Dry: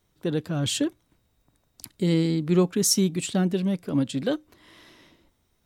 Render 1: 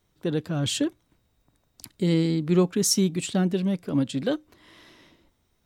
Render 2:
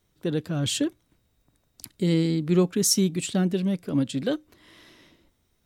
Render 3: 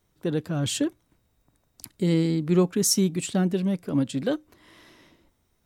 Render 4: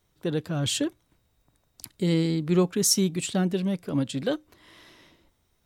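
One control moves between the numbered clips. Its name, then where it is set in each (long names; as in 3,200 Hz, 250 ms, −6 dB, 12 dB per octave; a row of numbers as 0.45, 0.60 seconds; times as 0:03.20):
parametric band, centre frequency: 12,000, 910, 3,600, 250 Hertz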